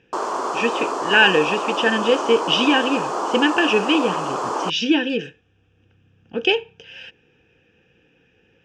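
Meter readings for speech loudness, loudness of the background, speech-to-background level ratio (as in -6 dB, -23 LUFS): -19.5 LUFS, -25.0 LUFS, 5.5 dB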